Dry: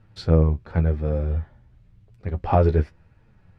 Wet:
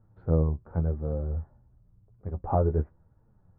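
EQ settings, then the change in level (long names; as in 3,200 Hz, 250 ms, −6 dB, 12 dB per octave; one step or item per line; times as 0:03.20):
low-pass filter 1,200 Hz 24 dB per octave
−6.5 dB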